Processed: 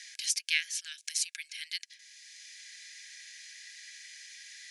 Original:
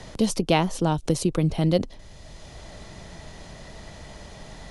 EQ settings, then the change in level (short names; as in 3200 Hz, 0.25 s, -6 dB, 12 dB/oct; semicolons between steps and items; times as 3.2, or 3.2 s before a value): rippled Chebyshev high-pass 1600 Hz, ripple 6 dB; +4.0 dB